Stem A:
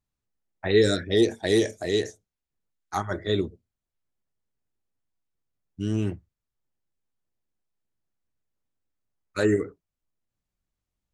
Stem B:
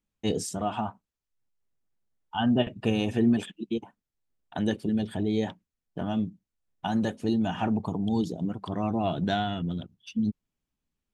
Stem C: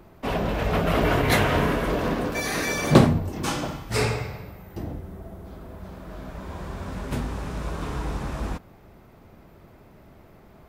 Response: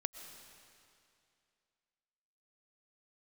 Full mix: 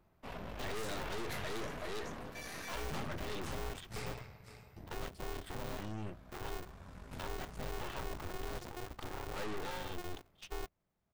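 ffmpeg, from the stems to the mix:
-filter_complex "[0:a]highpass=frequency=170:poles=1,highshelf=frequency=4900:gain=-8.5,volume=-2.5dB[link_01];[1:a]acompressor=threshold=-28dB:ratio=2.5,aeval=exprs='val(0)*sgn(sin(2*PI*180*n/s))':channel_layout=same,adelay=350,volume=-2.5dB[link_02];[2:a]volume=-13.5dB,asplit=2[link_03][link_04];[link_04]volume=-14dB,aecho=0:1:521:1[link_05];[link_01][link_02][link_03][link_05]amix=inputs=4:normalize=0,aeval=exprs='(tanh(70.8*val(0)+0.8)-tanh(0.8))/70.8':channel_layout=same,equalizer=frequency=350:width=0.91:gain=-4.5"

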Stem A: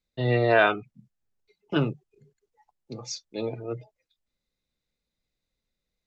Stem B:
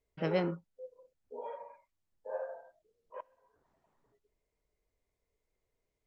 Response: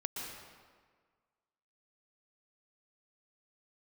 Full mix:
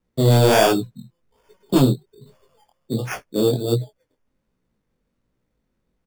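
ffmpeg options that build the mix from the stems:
-filter_complex "[0:a]acrossover=split=460[link_01][link_02];[link_01]acompressor=threshold=-31dB:ratio=1.5[link_03];[link_03][link_02]amix=inputs=2:normalize=0,equalizer=frequency=125:width_type=o:width=1:gain=4,equalizer=frequency=250:width_type=o:width=1:gain=6,equalizer=frequency=500:width_type=o:width=1:gain=3,equalizer=frequency=1000:width_type=o:width=1:gain=-6,equalizer=frequency=2000:width_type=o:width=1:gain=-12,equalizer=frequency=4000:width_type=o:width=1:gain=-5,aeval=exprs='0.355*sin(PI/2*2.24*val(0)/0.355)':channel_layout=same,volume=2dB[link_04];[1:a]acrossover=split=160[link_05][link_06];[link_06]acompressor=threshold=-40dB:ratio=3[link_07];[link_05][link_07]amix=inputs=2:normalize=0,aeval=exprs='0.0335*(cos(1*acos(clip(val(0)/0.0335,-1,1)))-cos(1*PI/2))+0.00944*(cos(8*acos(clip(val(0)/0.0335,-1,1)))-cos(8*PI/2))':channel_layout=same,volume=-19dB,asplit=2[link_08][link_09];[link_09]volume=-13dB,aecho=0:1:318|636|954|1272|1590|1908|2226:1|0.48|0.23|0.111|0.0531|0.0255|0.0122[link_10];[link_04][link_08][link_10]amix=inputs=3:normalize=0,acrusher=samples=11:mix=1:aa=0.000001,flanger=delay=16:depth=7.9:speed=1.3"

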